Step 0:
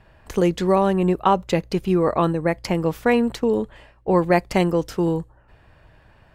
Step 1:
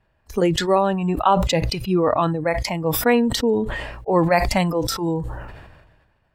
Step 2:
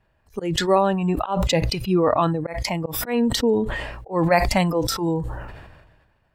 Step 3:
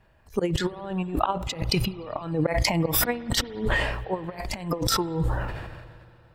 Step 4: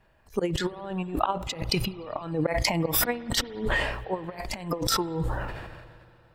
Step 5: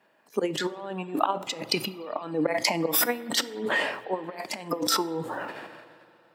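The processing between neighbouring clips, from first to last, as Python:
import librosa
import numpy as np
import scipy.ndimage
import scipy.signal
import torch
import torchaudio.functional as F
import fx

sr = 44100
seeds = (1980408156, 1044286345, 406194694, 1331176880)

y1 = fx.noise_reduce_blind(x, sr, reduce_db=15)
y1 = fx.sustainer(y1, sr, db_per_s=42.0)
y1 = y1 * librosa.db_to_amplitude(1.0)
y2 = fx.auto_swell(y1, sr, attack_ms=171.0)
y3 = fx.over_compress(y2, sr, threshold_db=-26.0, ratio=-0.5)
y3 = fx.rev_spring(y3, sr, rt60_s=3.3, pass_ms=(58,), chirp_ms=45, drr_db=17.5)
y4 = fx.peak_eq(y3, sr, hz=82.0, db=-4.5, octaves=2.1)
y4 = y4 * librosa.db_to_amplitude(-1.0)
y5 = scipy.signal.sosfilt(scipy.signal.butter(4, 210.0, 'highpass', fs=sr, output='sos'), y4)
y5 = fx.rev_fdn(y5, sr, rt60_s=0.59, lf_ratio=1.0, hf_ratio=0.85, size_ms=20.0, drr_db=16.0)
y5 = y5 * librosa.db_to_amplitude(1.0)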